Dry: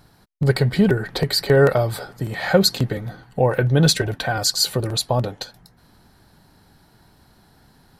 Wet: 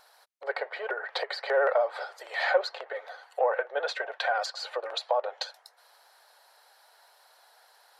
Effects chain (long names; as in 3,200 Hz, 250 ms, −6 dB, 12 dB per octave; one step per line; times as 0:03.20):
one-sided soft clipper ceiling −2.5 dBFS
treble cut that deepens with the level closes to 1,700 Hz, closed at −18 dBFS
Butterworth high-pass 520 Hz 48 dB per octave
in parallel at −2.5 dB: brickwall limiter −19.5 dBFS, peak gain reduction 11 dB
on the sum: pitch vibrato 15 Hz 45 cents
level −5.5 dB